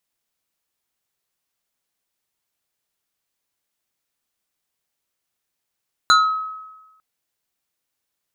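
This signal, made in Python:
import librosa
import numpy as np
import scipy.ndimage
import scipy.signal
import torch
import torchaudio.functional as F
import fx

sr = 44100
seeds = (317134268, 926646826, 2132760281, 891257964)

y = fx.fm2(sr, length_s=0.9, level_db=-8, carrier_hz=1280.0, ratio=2.11, index=1.4, index_s=0.53, decay_s=1.14, shape='exponential')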